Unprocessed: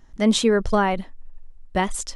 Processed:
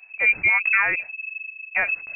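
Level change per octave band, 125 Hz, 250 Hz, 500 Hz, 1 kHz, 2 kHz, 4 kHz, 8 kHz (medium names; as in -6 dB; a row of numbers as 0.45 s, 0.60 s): under -15 dB, -26.5 dB, -16.5 dB, -7.0 dB, +13.0 dB, under -15 dB, under -40 dB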